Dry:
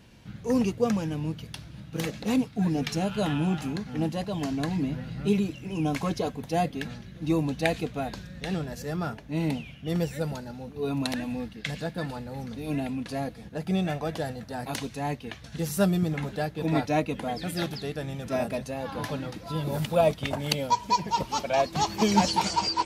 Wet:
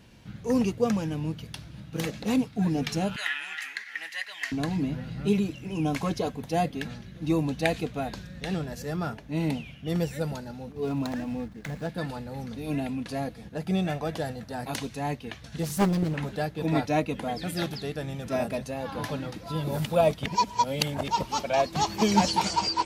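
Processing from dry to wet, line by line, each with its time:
0:03.16–0:04.52: high-pass with resonance 1,900 Hz, resonance Q 9
0:10.72–0:11.89: running median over 15 samples
0:15.63–0:16.20: highs frequency-modulated by the lows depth 0.9 ms
0:20.26–0:21.08: reverse

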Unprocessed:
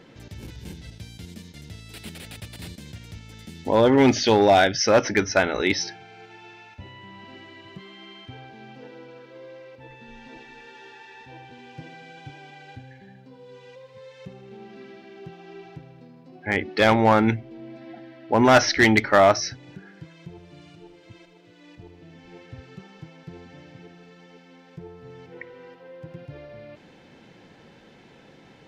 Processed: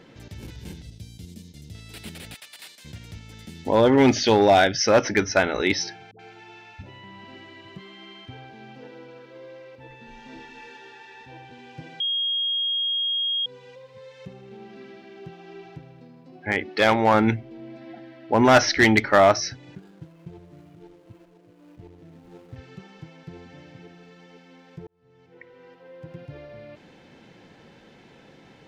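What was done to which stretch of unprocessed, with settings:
0:00.82–0:01.75: parametric band 1,300 Hz −14 dB 2.1 octaves
0:02.34–0:02.85: high-pass filter 940 Hz
0:06.11–0:07.04: all-pass dispersion highs, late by 82 ms, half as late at 480 Hz
0:10.04–0:10.77: flutter between parallel walls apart 4.7 metres, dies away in 0.39 s
0:12.00–0:13.46: beep over 3,260 Hz −22 dBFS
0:16.52–0:17.14: low-shelf EQ 230 Hz −7 dB
0:19.75–0:22.56: running median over 25 samples
0:24.87–0:26.15: fade in linear

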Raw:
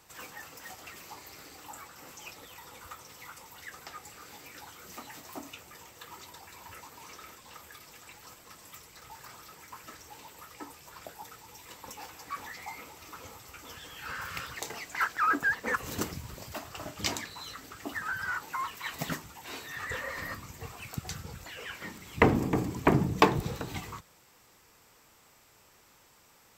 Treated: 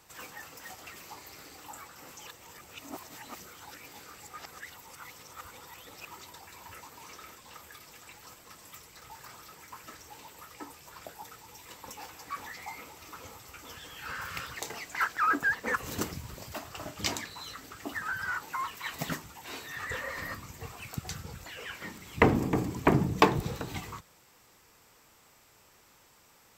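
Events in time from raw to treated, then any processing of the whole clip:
0:02.27–0:06.05: reverse

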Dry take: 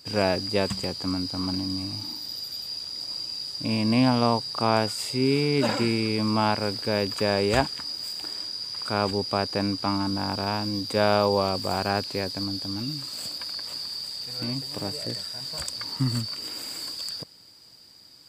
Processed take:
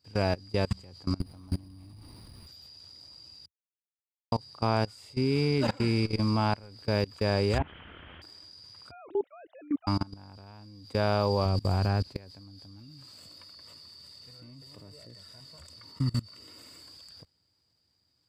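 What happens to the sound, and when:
0:01.20–0:02.47: windowed peak hold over 5 samples
0:03.46–0:04.32: silence
0:07.58–0:08.22: linear delta modulator 16 kbit/s, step −30.5 dBFS
0:08.91–0:09.87: three sine waves on the formant tracks
0:11.45–0:12.16: low-shelf EQ 230 Hz +9 dB
0:13.19–0:16.82: notch comb filter 800 Hz
whole clip: parametric band 81 Hz +13 dB 1.1 octaves; output level in coarse steps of 23 dB; high-shelf EQ 6,200 Hz −7 dB; level −2.5 dB

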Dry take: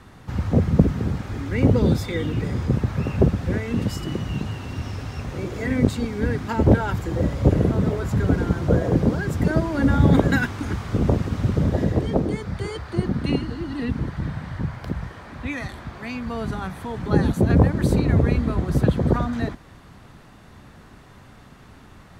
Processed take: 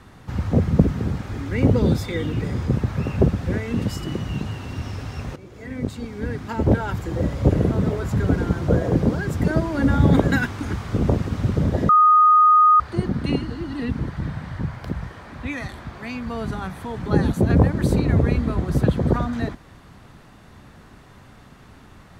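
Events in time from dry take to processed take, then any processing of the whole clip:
0:05.36–0:07.95: fade in equal-power, from −16 dB
0:11.89–0:12.80: beep over 1,240 Hz −10 dBFS

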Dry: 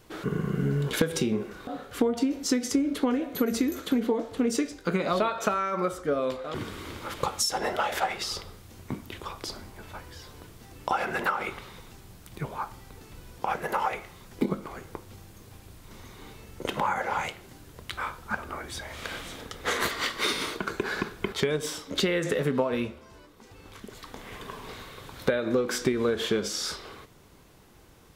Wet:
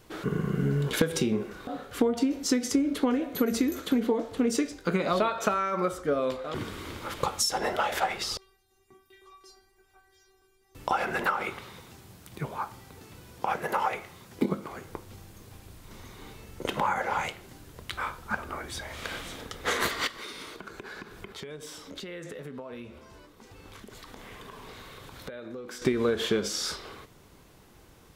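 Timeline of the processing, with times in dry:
0:08.37–0:10.75: stiff-string resonator 380 Hz, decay 0.4 s, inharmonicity 0.002
0:11.41–0:14.89: high-pass filter 76 Hz
0:20.07–0:25.82: downward compressor 3 to 1, threshold −42 dBFS

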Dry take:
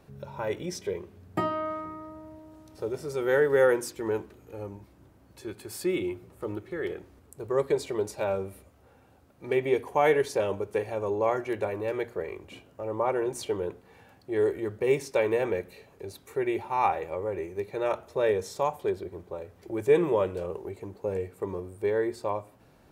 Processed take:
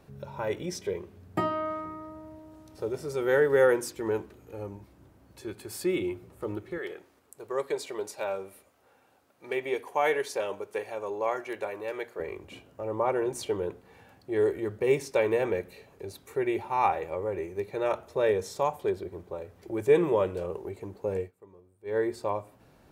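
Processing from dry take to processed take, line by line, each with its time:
0:06.78–0:12.20: high-pass filter 660 Hz 6 dB per octave
0:21.20–0:21.97: duck −20 dB, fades 0.12 s

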